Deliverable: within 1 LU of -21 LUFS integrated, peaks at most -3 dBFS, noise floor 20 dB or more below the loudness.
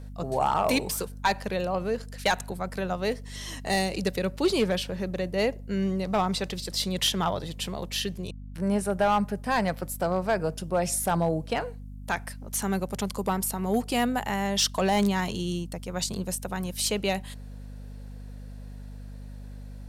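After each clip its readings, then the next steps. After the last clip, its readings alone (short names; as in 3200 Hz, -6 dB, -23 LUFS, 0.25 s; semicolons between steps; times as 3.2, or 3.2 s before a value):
clipped 0.3%; flat tops at -16.0 dBFS; hum 50 Hz; harmonics up to 250 Hz; hum level -38 dBFS; loudness -28.0 LUFS; peak -16.0 dBFS; loudness target -21.0 LUFS
-> clip repair -16 dBFS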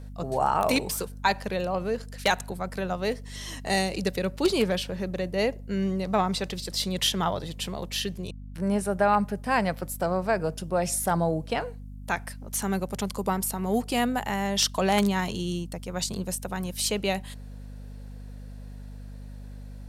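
clipped 0.0%; hum 50 Hz; harmonics up to 250 Hz; hum level -38 dBFS
-> de-hum 50 Hz, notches 5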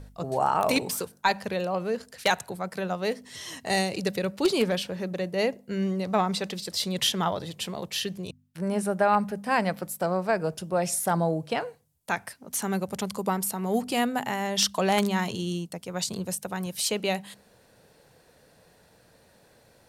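hum none; loudness -28.0 LUFS; peak -6.5 dBFS; loudness target -21.0 LUFS
-> gain +7 dB; limiter -3 dBFS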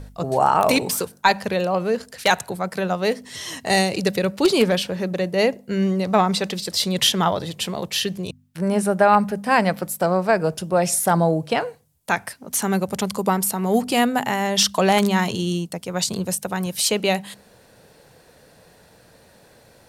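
loudness -21.0 LUFS; peak -3.0 dBFS; noise floor -53 dBFS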